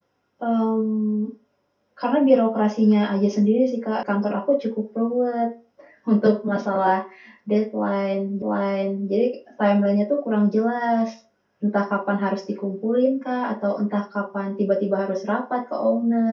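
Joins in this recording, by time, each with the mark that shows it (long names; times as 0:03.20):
0:04.03: cut off before it has died away
0:08.42: the same again, the last 0.69 s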